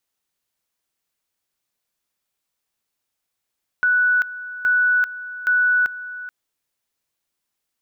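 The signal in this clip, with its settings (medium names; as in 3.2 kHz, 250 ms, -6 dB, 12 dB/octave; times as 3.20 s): two-level tone 1.48 kHz -14 dBFS, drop 15.5 dB, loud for 0.39 s, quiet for 0.43 s, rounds 3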